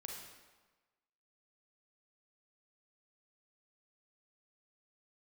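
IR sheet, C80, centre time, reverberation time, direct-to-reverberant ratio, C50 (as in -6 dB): 4.5 dB, 61 ms, 1.3 s, 0.0 dB, 1.5 dB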